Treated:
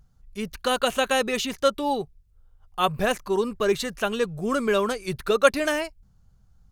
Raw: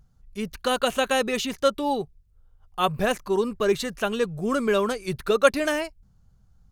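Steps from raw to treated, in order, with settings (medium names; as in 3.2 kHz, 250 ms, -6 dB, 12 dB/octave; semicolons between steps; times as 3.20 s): peaking EQ 210 Hz -2 dB 2.9 oct; trim +1 dB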